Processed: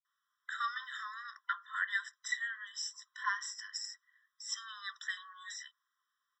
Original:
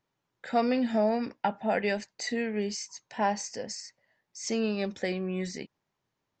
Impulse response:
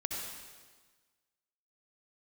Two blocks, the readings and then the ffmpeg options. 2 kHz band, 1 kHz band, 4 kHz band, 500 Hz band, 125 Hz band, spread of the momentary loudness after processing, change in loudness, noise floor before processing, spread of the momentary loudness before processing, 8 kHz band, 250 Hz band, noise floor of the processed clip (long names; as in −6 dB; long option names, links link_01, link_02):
+1.0 dB, −9.0 dB, −2.5 dB, below −40 dB, below −40 dB, 10 LU, −8.5 dB, −83 dBFS, 13 LU, −5.0 dB, below −40 dB, below −85 dBFS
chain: -filter_complex "[0:a]equalizer=frequency=710:width_type=o:width=2.3:gain=5,acrossover=split=330[link_01][link_02];[link_02]adelay=50[link_03];[link_01][link_03]amix=inputs=2:normalize=0,afftfilt=real='re*eq(mod(floor(b*sr/1024/1000),2),1)':imag='im*eq(mod(floor(b*sr/1024/1000),2),1)':win_size=1024:overlap=0.75,volume=1dB"